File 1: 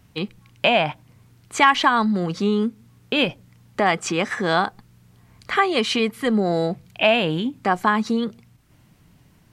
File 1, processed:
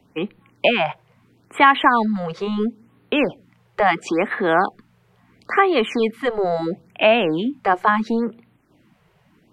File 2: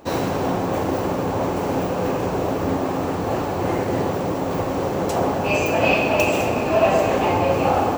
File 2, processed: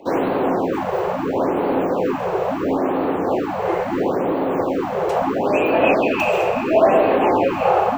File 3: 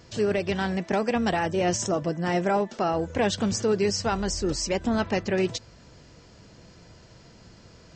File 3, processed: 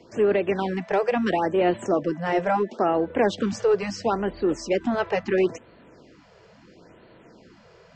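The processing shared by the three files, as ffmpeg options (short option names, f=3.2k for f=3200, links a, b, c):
-filter_complex "[0:a]acrossover=split=270 3200:gain=0.0794 1 0.224[a][b][c];[a][b][c]amix=inputs=3:normalize=0,acrossover=split=360[d][e];[d]aeval=exprs='0.0944*sin(PI/2*1.78*val(0)/0.0944)':c=same[f];[f][e]amix=inputs=2:normalize=0,afftfilt=real='re*(1-between(b*sr/1024,240*pow(6700/240,0.5+0.5*sin(2*PI*0.74*pts/sr))/1.41,240*pow(6700/240,0.5+0.5*sin(2*PI*0.74*pts/sr))*1.41))':imag='im*(1-between(b*sr/1024,240*pow(6700/240,0.5+0.5*sin(2*PI*0.74*pts/sr))/1.41,240*pow(6700/240,0.5+0.5*sin(2*PI*0.74*pts/sr))*1.41))':win_size=1024:overlap=0.75,volume=2.5dB"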